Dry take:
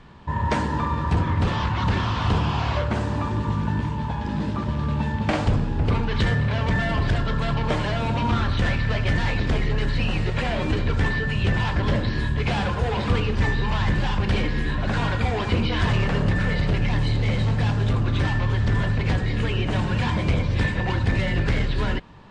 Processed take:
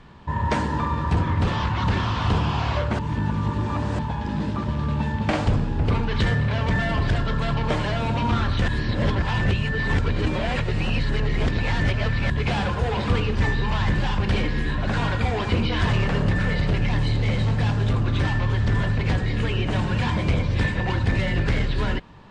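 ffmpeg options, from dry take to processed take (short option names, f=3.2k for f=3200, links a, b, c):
-filter_complex "[0:a]asplit=5[a][b][c][d][e];[a]atrim=end=2.992[f];[b]atrim=start=2.988:end=3.992,asetpts=PTS-STARTPTS,areverse[g];[c]atrim=start=3.988:end=8.682[h];[d]atrim=start=8.678:end=12.302,asetpts=PTS-STARTPTS,areverse[i];[e]atrim=start=12.298[j];[f][g]acrossfade=d=0.004:c1=hsin:c2=hsin[k];[k][h]acrossfade=d=0.004:c1=hsin:c2=hsin[l];[l][i]acrossfade=d=0.004:c1=hsin:c2=hsin[m];[m][j]acrossfade=d=0.004:c1=hsin:c2=hsin"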